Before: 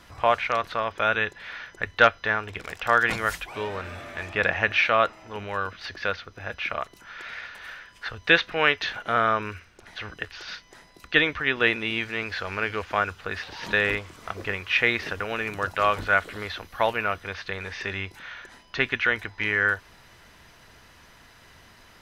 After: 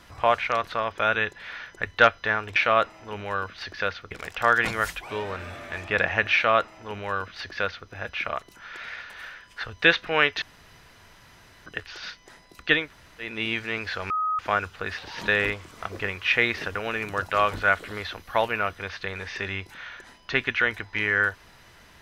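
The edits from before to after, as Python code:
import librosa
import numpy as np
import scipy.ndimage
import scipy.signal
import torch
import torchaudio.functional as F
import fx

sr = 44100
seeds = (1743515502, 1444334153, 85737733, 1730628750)

y = fx.edit(x, sr, fx.duplicate(start_s=4.79, length_s=1.55, to_s=2.56),
    fx.room_tone_fill(start_s=8.87, length_s=1.24),
    fx.room_tone_fill(start_s=11.27, length_s=0.48, crossfade_s=0.24),
    fx.bleep(start_s=12.55, length_s=0.29, hz=1260.0, db=-22.5), tone=tone)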